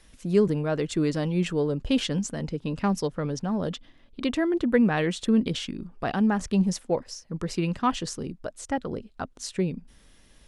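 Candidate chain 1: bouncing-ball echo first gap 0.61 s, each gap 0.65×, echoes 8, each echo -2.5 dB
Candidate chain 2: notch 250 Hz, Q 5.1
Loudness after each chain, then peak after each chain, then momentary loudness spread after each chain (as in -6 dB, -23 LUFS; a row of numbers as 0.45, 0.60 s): -24.0, -28.0 LUFS; -8.0, -10.0 dBFS; 7, 11 LU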